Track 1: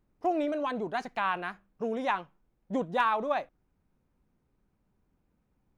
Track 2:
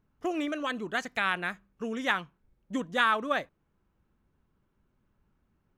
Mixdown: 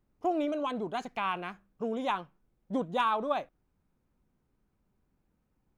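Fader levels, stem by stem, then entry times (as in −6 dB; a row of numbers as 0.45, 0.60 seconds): −2.0, −13.0 decibels; 0.00, 0.00 seconds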